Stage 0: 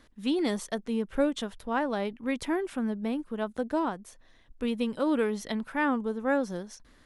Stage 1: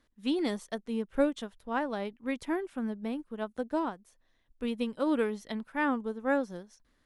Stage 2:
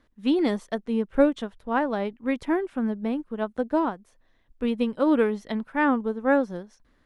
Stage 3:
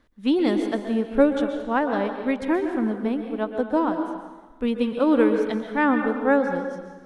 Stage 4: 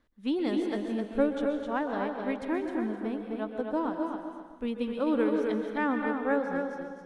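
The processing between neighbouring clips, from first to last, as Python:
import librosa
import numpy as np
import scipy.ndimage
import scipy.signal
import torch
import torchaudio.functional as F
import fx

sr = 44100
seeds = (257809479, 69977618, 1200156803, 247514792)

y1 = fx.upward_expand(x, sr, threshold_db=-46.0, expansion=1.5)
y2 = fx.high_shelf(y1, sr, hz=4000.0, db=-11.5)
y2 = F.gain(torch.from_numpy(y2), 7.5).numpy()
y3 = fx.rev_plate(y2, sr, seeds[0], rt60_s=1.3, hf_ratio=0.85, predelay_ms=110, drr_db=5.5)
y3 = F.gain(torch.from_numpy(y3), 1.5).numpy()
y4 = fx.echo_feedback(y3, sr, ms=259, feedback_pct=22, wet_db=-5.5)
y4 = F.gain(torch.from_numpy(y4), -8.5).numpy()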